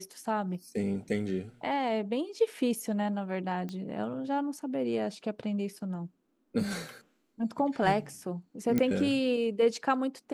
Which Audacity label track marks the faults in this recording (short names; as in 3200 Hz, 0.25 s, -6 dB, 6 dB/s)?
3.690000	3.690000	pop -26 dBFS
8.780000	8.780000	pop -15 dBFS